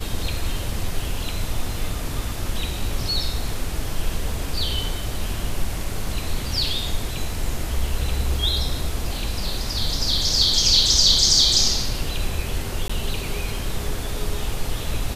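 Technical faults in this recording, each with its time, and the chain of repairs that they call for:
12.88–12.89 gap 15 ms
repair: interpolate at 12.88, 15 ms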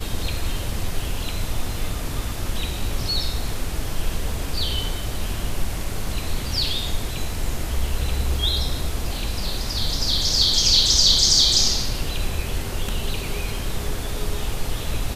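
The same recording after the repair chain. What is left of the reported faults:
none

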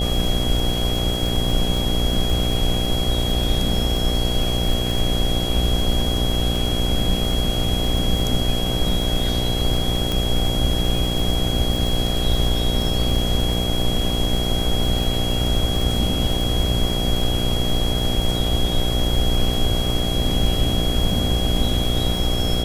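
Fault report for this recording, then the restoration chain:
buzz 60 Hz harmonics 13 -24 dBFS
crackle 34/s -24 dBFS
tone 3300 Hz -26 dBFS
10.12 pop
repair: de-click; notch 3300 Hz, Q 30; de-hum 60 Hz, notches 13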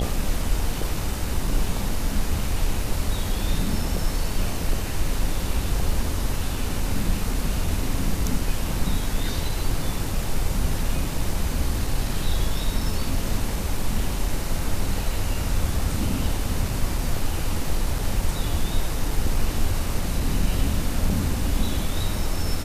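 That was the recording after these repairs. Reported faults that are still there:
none

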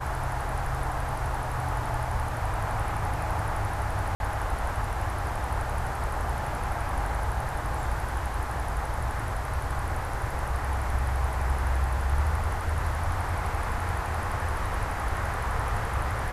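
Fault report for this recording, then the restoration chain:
4.15–4.2 gap 51 ms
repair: interpolate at 4.15, 51 ms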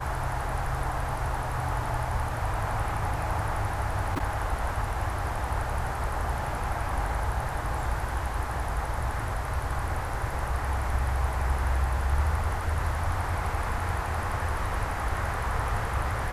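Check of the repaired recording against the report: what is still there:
none

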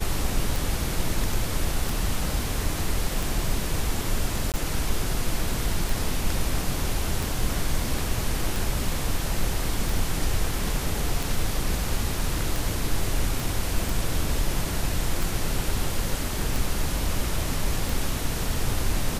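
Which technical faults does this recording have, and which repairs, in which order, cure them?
tick 45 rpm
4.52–4.54 gap 18 ms
13.4 pop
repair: de-click; interpolate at 4.52, 18 ms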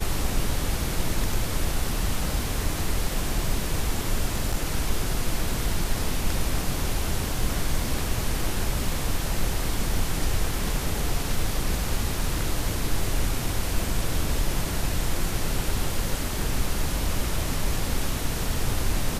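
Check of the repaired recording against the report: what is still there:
13.4 pop

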